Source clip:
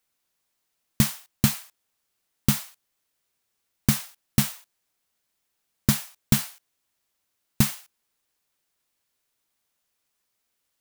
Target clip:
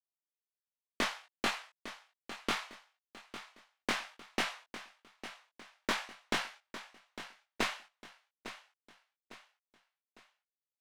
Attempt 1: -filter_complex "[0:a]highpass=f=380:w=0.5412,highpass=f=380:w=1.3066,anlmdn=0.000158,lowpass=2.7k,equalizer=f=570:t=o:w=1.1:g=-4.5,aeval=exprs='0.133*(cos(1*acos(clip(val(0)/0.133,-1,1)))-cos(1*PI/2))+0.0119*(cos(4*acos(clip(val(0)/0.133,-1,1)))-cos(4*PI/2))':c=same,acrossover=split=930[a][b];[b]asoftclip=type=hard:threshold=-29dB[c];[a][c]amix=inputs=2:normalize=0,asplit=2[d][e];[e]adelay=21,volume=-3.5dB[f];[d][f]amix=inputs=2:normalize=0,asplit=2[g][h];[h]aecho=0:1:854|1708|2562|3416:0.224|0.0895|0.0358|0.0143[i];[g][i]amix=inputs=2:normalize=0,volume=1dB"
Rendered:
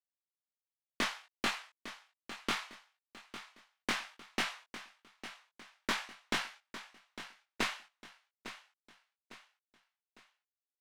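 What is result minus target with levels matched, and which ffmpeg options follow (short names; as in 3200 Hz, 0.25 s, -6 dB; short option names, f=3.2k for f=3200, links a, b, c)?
500 Hz band -2.5 dB
-filter_complex "[0:a]highpass=f=380:w=0.5412,highpass=f=380:w=1.3066,anlmdn=0.000158,lowpass=2.7k,aeval=exprs='0.133*(cos(1*acos(clip(val(0)/0.133,-1,1)))-cos(1*PI/2))+0.0119*(cos(4*acos(clip(val(0)/0.133,-1,1)))-cos(4*PI/2))':c=same,acrossover=split=930[a][b];[b]asoftclip=type=hard:threshold=-29dB[c];[a][c]amix=inputs=2:normalize=0,asplit=2[d][e];[e]adelay=21,volume=-3.5dB[f];[d][f]amix=inputs=2:normalize=0,asplit=2[g][h];[h]aecho=0:1:854|1708|2562|3416:0.224|0.0895|0.0358|0.0143[i];[g][i]amix=inputs=2:normalize=0,volume=1dB"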